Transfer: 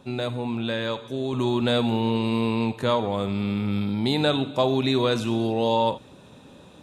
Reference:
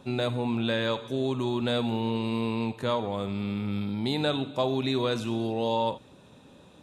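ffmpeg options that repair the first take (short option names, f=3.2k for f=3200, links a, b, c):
-af "asetnsamples=n=441:p=0,asendcmd='1.33 volume volume -5dB',volume=0dB"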